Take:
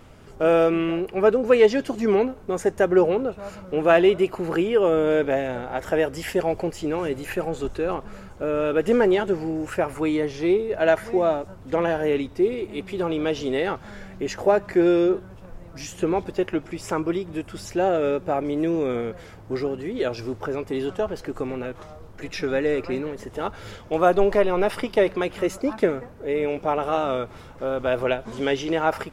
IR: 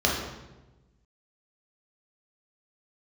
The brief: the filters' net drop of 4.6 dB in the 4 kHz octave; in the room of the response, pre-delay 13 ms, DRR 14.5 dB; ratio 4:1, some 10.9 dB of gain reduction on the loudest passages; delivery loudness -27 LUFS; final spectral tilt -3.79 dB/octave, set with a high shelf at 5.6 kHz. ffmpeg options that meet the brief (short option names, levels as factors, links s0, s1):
-filter_complex "[0:a]equalizer=f=4000:t=o:g=-8.5,highshelf=f=5600:g=4,acompressor=threshold=0.0562:ratio=4,asplit=2[s0][s1];[1:a]atrim=start_sample=2205,adelay=13[s2];[s1][s2]afir=irnorm=-1:irlink=0,volume=0.0355[s3];[s0][s3]amix=inputs=2:normalize=0,volume=1.33"